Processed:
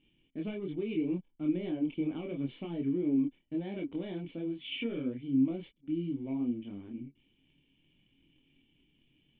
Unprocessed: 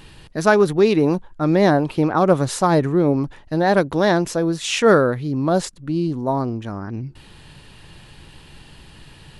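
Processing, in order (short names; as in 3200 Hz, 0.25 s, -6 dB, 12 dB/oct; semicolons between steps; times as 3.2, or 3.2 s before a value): low shelf 320 Hz -12 dB; sample leveller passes 2; chorus voices 4, 0.75 Hz, delay 26 ms, depth 4.3 ms; compressor 4:1, threshold -17 dBFS, peak gain reduction 8.5 dB; vocal tract filter i; gain -2 dB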